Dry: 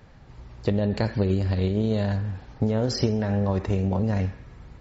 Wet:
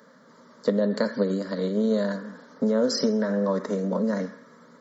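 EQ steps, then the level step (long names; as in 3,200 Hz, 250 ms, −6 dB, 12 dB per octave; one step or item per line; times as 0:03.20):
high-pass filter 220 Hz 24 dB per octave
phaser with its sweep stopped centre 520 Hz, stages 8
+5.5 dB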